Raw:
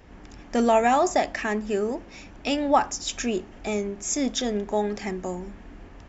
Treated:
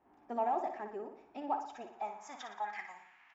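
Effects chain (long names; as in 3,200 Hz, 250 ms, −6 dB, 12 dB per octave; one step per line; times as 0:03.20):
low shelf with overshoot 640 Hz −8.5 dB, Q 3
in parallel at −5.5 dB: hard clipping −17 dBFS, distortion −9 dB
on the sum: band-pass filter sweep 400 Hz → 2,200 Hz, 0:02.71–0:05.35
repeating echo 106 ms, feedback 54%, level −8 dB
phase-vocoder stretch with locked phases 0.55×
level −5.5 dB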